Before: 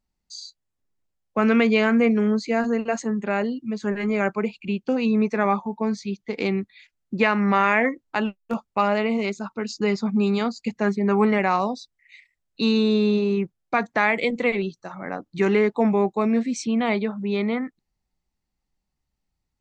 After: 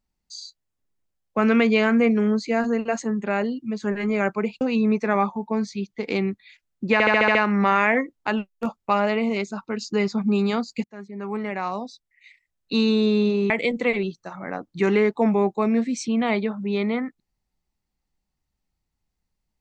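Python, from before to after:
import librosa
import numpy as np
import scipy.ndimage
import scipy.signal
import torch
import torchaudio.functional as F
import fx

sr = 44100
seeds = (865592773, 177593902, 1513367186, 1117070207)

y = fx.edit(x, sr, fx.cut(start_s=4.61, length_s=0.3),
    fx.stutter(start_s=7.23, slice_s=0.07, count=7),
    fx.fade_in_from(start_s=10.72, length_s=1.9, floor_db=-23.0),
    fx.cut(start_s=13.38, length_s=0.71), tone=tone)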